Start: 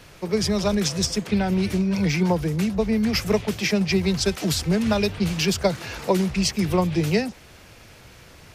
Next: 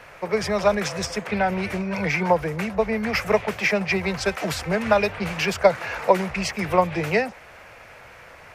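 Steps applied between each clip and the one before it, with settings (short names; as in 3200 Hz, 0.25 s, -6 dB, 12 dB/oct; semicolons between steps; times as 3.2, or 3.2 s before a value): band shelf 1100 Hz +13 dB 2.7 oct; gain -6 dB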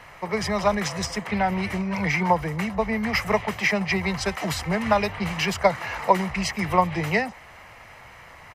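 comb 1 ms, depth 43%; gain -1 dB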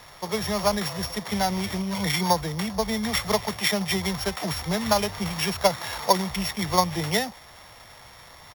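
sample sorter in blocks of 8 samples; gain -1.5 dB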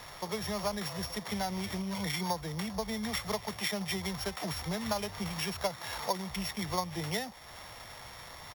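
compressor 2:1, threshold -39 dBFS, peak gain reduction 14 dB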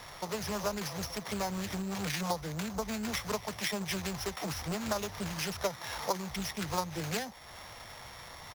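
Doppler distortion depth 0.56 ms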